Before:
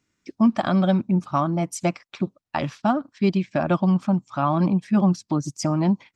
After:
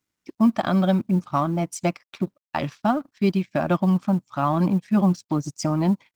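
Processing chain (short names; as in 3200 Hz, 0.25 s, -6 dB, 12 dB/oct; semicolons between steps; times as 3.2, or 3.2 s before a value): G.711 law mismatch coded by A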